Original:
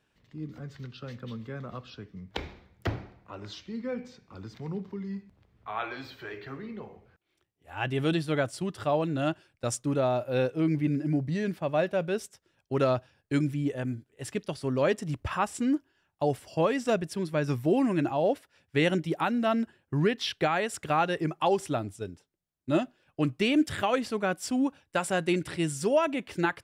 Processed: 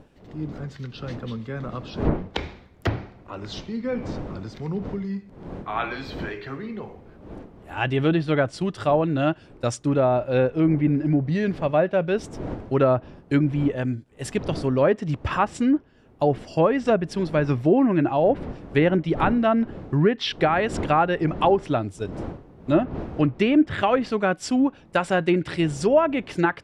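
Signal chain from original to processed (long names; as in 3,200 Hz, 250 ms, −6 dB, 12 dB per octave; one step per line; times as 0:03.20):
wind on the microphone 350 Hz −44 dBFS
treble cut that deepens with the level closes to 1,600 Hz, closed at −21 dBFS
level +6.5 dB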